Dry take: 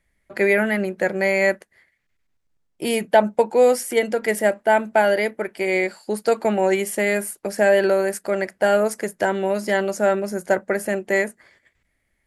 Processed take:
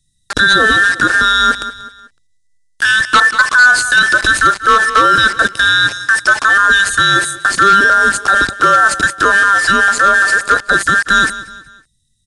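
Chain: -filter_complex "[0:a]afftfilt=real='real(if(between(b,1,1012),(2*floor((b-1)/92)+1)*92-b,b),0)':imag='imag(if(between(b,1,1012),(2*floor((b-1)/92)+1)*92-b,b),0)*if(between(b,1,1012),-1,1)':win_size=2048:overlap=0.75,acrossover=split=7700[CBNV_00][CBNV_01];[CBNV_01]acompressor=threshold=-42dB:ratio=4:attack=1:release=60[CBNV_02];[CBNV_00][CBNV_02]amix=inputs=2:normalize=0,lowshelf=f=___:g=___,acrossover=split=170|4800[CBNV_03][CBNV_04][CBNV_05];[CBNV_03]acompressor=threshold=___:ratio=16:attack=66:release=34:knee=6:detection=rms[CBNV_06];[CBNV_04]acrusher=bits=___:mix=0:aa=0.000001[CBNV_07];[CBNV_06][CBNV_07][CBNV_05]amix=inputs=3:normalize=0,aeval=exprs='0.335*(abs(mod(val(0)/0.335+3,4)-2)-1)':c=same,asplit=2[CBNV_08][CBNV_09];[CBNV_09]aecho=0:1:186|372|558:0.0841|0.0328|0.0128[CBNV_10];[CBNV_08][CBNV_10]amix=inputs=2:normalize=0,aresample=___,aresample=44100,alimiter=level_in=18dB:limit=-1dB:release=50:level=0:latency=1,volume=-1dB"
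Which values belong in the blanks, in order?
140, -2.5, -42dB, 5, 22050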